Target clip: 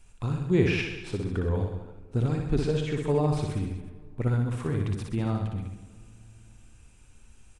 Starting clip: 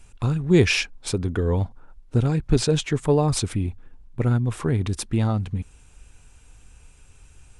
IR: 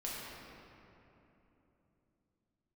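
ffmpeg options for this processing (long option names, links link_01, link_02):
-filter_complex "[0:a]acrossover=split=3000[link_01][link_02];[link_02]acompressor=threshold=-42dB:ratio=4:attack=1:release=60[link_03];[link_01][link_03]amix=inputs=2:normalize=0,aecho=1:1:60|126|198.6|278.5|366.3:0.631|0.398|0.251|0.158|0.1,asplit=2[link_04][link_05];[1:a]atrim=start_sample=2205[link_06];[link_05][link_06]afir=irnorm=-1:irlink=0,volume=-20.5dB[link_07];[link_04][link_07]amix=inputs=2:normalize=0,volume=-7.5dB"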